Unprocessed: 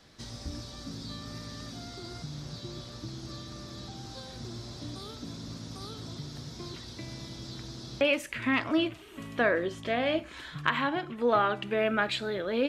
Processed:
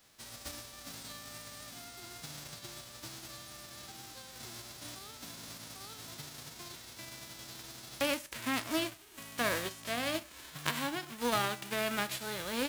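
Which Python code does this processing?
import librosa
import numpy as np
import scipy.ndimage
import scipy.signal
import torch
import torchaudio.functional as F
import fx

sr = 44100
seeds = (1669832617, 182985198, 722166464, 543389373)

y = fx.envelope_flatten(x, sr, power=0.3)
y = F.gain(torch.from_numpy(y), -6.5).numpy()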